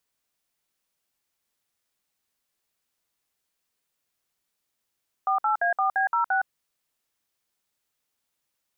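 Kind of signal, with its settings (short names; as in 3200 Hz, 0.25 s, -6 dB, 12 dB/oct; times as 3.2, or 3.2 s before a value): DTMF "48A4B06", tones 0.114 s, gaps 58 ms, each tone -23 dBFS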